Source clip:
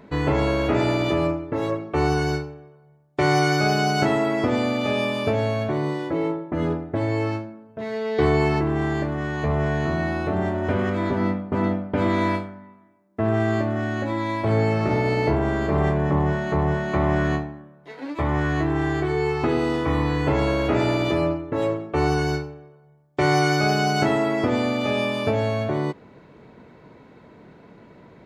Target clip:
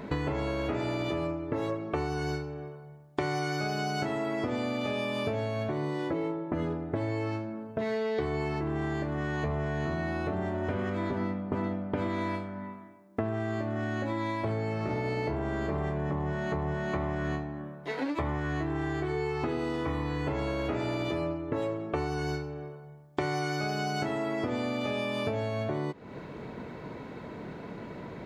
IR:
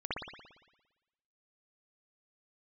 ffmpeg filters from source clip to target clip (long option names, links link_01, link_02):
-af "acompressor=threshold=-35dB:ratio=10,volume=6.5dB"